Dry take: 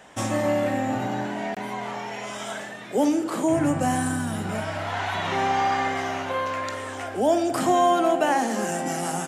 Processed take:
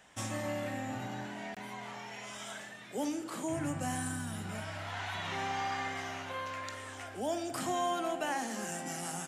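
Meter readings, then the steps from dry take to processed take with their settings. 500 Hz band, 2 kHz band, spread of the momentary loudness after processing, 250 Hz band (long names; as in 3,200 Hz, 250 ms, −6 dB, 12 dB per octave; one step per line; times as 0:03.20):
−14.5 dB, −9.5 dB, 9 LU, −13.5 dB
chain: parametric band 460 Hz −8 dB 2.9 octaves
level −7 dB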